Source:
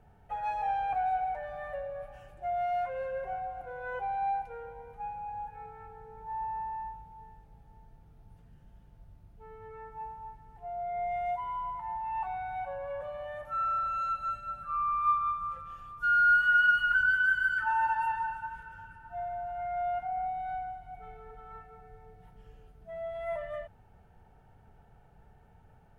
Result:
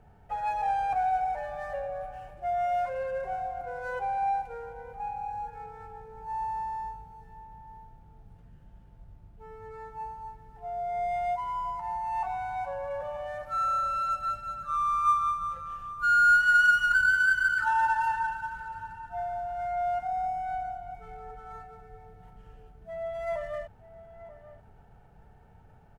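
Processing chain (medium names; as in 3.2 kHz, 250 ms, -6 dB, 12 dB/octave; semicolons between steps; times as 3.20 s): median filter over 9 samples; echo from a far wall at 160 m, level -15 dB; trim +3 dB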